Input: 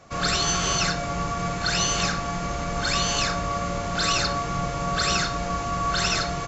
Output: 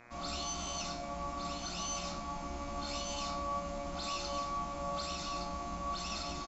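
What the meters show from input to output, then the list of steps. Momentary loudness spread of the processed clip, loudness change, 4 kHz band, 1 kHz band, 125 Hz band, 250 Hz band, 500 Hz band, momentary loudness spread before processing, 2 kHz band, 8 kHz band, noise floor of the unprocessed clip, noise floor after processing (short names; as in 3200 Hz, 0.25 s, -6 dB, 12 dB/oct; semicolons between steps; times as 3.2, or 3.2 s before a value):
3 LU, -14.0 dB, -15.0 dB, -11.5 dB, -17.0 dB, -13.0 dB, -11.5 dB, 6 LU, -20.0 dB, n/a, -29 dBFS, -42 dBFS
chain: echo 1.164 s -7 dB; limiter -15 dBFS, peak gain reduction 6 dB; high shelf 7000 Hz -11 dB; fixed phaser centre 450 Hz, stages 6; resonator 71 Hz, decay 0.42 s, harmonics all, mix 80%; buzz 120 Hz, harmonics 21, -56 dBFS 0 dB/oct; gain -2 dB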